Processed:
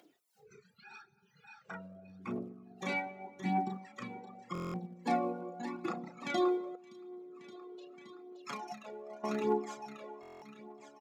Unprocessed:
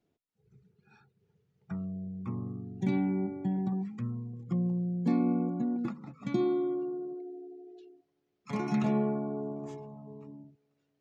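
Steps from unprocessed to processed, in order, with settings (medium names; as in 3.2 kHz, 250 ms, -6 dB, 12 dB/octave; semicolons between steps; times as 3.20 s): tracing distortion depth 0.02 ms; doubling 33 ms -3.5 dB; feedback delay 571 ms, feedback 44%, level -8 dB; reverberation, pre-delay 3 ms, DRR 10 dB; spectral noise reduction 19 dB; 6.75–9.24 s: compression 10:1, threshold -37 dBFS, peak gain reduction 16.5 dB; reverb removal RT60 1.5 s; phaser 0.84 Hz, delay 2.2 ms, feedback 54%; high-pass 530 Hz 12 dB/octave; upward compressor, threshold -52 dBFS; buffer glitch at 4.53/10.21 s, samples 1024, times 8; trim +5.5 dB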